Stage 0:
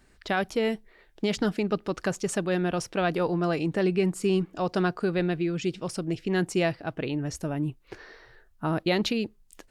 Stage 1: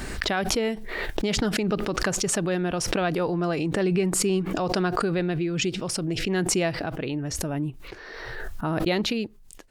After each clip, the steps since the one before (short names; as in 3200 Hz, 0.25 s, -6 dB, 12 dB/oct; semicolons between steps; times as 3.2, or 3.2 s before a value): gate -56 dBFS, range -13 dB; backwards sustainer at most 27 dB/s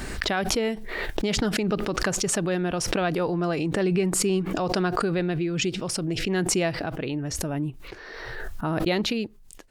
nothing audible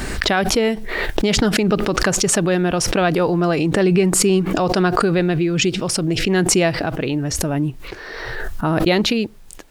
added noise pink -65 dBFS; maximiser +9 dB; gain -1 dB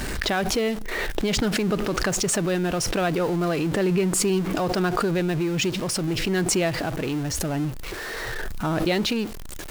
zero-crossing step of -22 dBFS; gain -8 dB